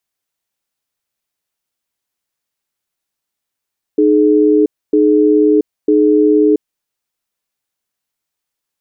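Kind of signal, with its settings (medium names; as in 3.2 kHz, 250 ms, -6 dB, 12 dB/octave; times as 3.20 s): cadence 306 Hz, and 424 Hz, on 0.68 s, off 0.27 s, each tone -10 dBFS 2.62 s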